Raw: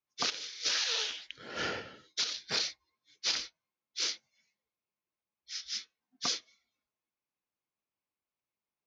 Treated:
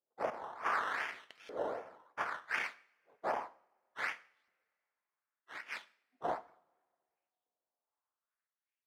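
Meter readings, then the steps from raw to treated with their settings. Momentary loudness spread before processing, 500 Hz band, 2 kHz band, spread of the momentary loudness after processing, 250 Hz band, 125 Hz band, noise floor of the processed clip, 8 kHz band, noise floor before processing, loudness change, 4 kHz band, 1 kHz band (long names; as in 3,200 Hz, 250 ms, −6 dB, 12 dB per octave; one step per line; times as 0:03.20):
12 LU, +5.0 dB, +1.0 dB, 14 LU, −3.0 dB, −7.5 dB, below −85 dBFS, −24.0 dB, below −85 dBFS, −5.5 dB, −21.5 dB, +7.0 dB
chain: sample-and-hold swept by an LFO 15×, swing 60% 2.6 Hz
auto-filter band-pass saw up 0.67 Hz 460–3,500 Hz
coupled-rooms reverb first 0.51 s, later 2.3 s, from −25 dB, DRR 13.5 dB
level +3.5 dB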